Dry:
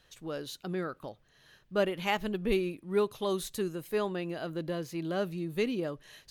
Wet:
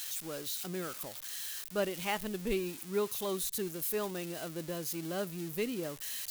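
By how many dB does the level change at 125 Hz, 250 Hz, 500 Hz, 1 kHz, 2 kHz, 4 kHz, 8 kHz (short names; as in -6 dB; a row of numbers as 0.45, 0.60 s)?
-4.5, -4.5, -4.5, -4.5, -3.5, 0.0, +9.5 dB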